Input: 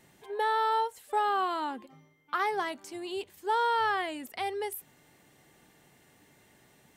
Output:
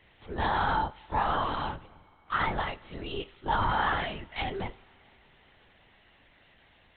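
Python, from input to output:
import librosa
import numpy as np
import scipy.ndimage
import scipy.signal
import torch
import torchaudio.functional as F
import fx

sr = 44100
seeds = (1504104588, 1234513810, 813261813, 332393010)

y = fx.freq_snap(x, sr, grid_st=2)
y = fx.lpc_vocoder(y, sr, seeds[0], excitation='whisper', order=10)
y = fx.rev_double_slope(y, sr, seeds[1], early_s=0.55, late_s=4.6, knee_db=-18, drr_db=17.5)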